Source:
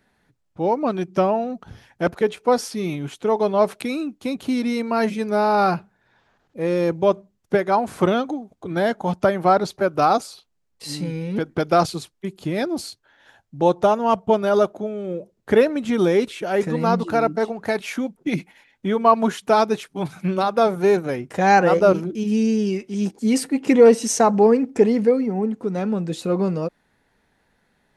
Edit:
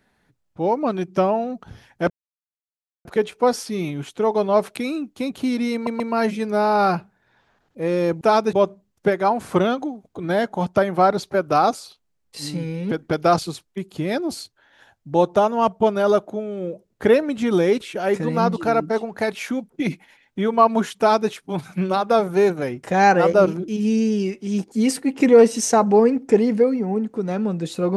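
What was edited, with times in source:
2.10 s: insert silence 0.95 s
4.79 s: stutter 0.13 s, 3 plays
19.45–19.77 s: copy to 7.00 s

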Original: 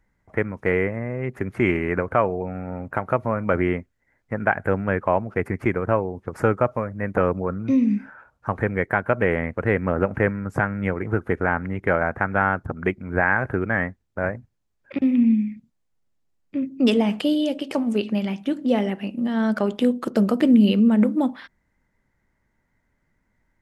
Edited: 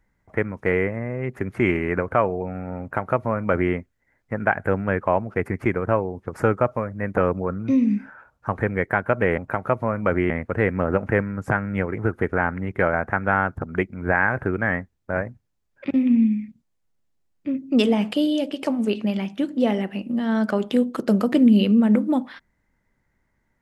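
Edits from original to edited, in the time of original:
2.81–3.73 s: copy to 9.38 s

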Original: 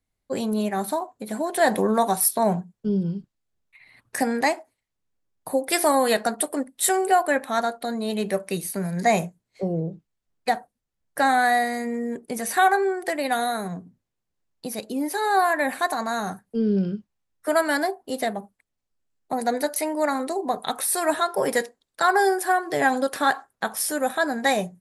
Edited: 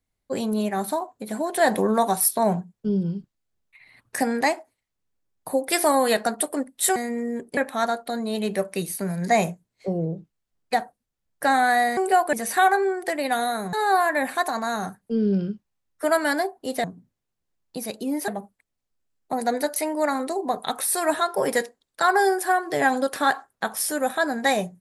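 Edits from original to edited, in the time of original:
6.96–7.32 s: swap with 11.72–12.33 s
13.73–15.17 s: move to 18.28 s

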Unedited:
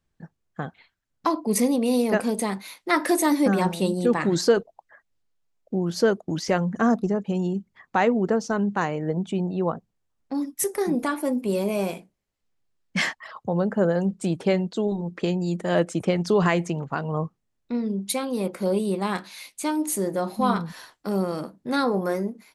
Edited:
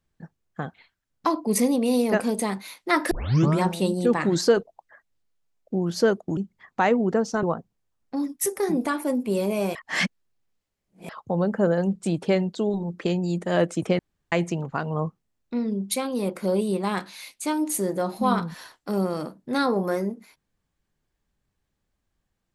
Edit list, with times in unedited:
3.11 s: tape start 0.50 s
6.37–7.53 s: delete
8.59–9.61 s: delete
11.93–13.27 s: reverse
16.17–16.50 s: room tone

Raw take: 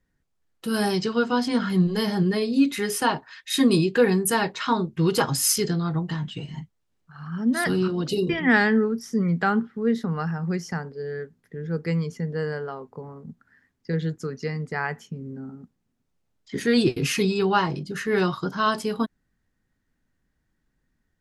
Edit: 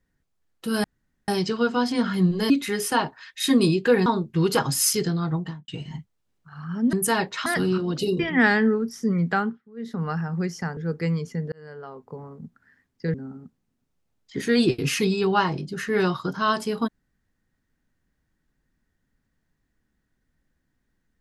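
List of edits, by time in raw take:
0.84 s: insert room tone 0.44 s
2.06–2.60 s: delete
4.16–4.69 s: move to 7.56 s
6.00–6.31 s: studio fade out
9.44–10.14 s: dip -20 dB, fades 0.28 s
10.87–11.62 s: delete
12.37–13.00 s: fade in
13.99–15.32 s: delete

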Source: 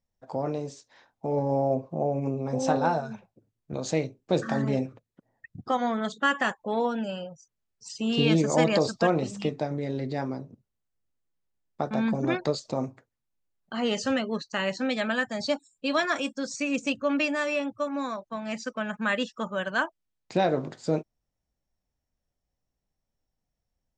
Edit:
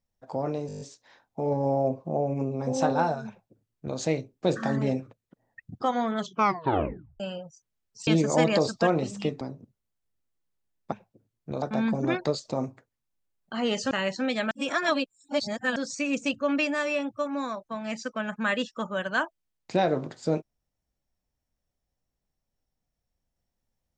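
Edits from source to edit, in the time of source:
0.67 s: stutter 0.02 s, 8 plays
3.14–3.84 s: copy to 11.82 s
6.05 s: tape stop 1.01 s
7.93–8.27 s: delete
9.61–10.31 s: delete
14.11–14.52 s: delete
15.12–16.37 s: reverse

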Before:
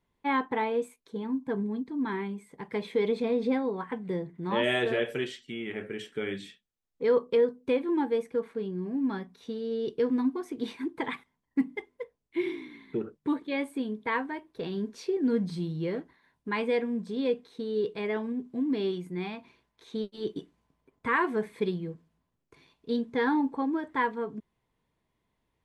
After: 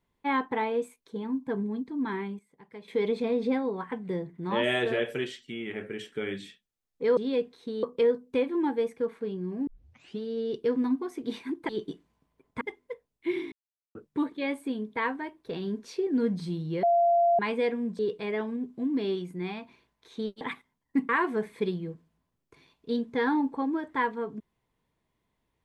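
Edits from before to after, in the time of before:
2.04–3.23 s: dip -13 dB, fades 0.35 s logarithmic
9.01 s: tape start 0.53 s
11.03–11.71 s: swap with 20.17–21.09 s
12.62–13.05 s: mute
15.93–16.49 s: bleep 688 Hz -19 dBFS
17.09–17.75 s: move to 7.17 s

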